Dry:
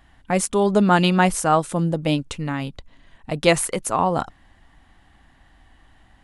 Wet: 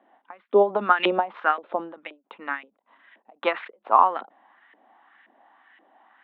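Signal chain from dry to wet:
auto-filter band-pass saw up 1.9 Hz 450–2,100 Hz
Chebyshev band-pass filter 210–3,700 Hz, order 5
every ending faded ahead of time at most 230 dB per second
level +8.5 dB

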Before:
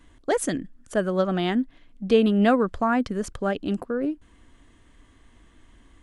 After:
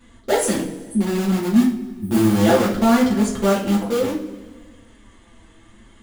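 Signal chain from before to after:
0:01.61–0:02.66: sub-harmonics by changed cycles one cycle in 2, muted
0:00.74–0:02.35: time-frequency box erased 390–8,200 Hz
on a send: delay with a low-pass on its return 90 ms, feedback 65%, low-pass 440 Hz, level −12 dB
on the sum: flanger 0.64 Hz, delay 3.9 ms, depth 2.6 ms, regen +49%
in parallel at −7.5 dB: wrap-around overflow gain 25 dB
on the sum: coupled-rooms reverb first 0.36 s, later 1.6 s, from −18 dB, DRR −6 dB
level +1.5 dB

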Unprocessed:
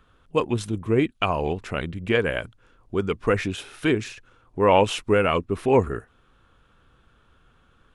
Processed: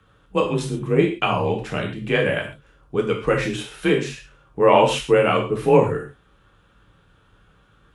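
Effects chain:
reverb whose tail is shaped and stops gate 160 ms falling, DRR 0 dB
frequency shifter +29 Hz

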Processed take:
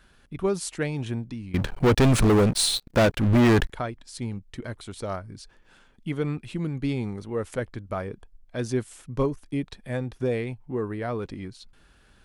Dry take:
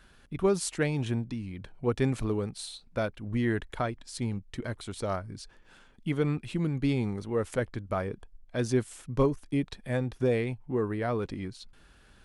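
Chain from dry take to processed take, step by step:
0:01.54–0:03.70: leveller curve on the samples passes 5

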